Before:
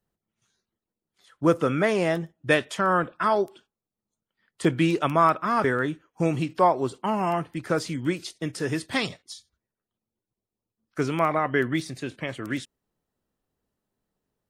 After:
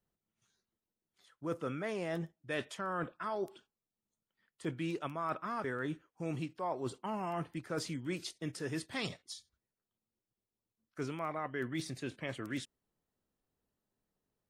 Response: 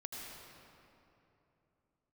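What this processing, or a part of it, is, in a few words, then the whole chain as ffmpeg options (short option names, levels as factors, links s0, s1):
compression on the reversed sound: -af "areverse,acompressor=threshold=0.0355:ratio=6,areverse,volume=0.531"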